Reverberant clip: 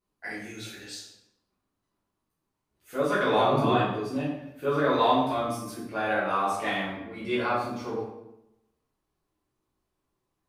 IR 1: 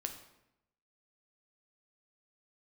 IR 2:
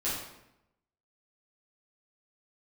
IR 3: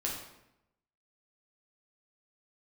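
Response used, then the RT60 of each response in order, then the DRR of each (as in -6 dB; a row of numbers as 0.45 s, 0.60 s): 2; 0.85 s, 0.85 s, 0.85 s; 5.0 dB, -10.0 dB, -3.5 dB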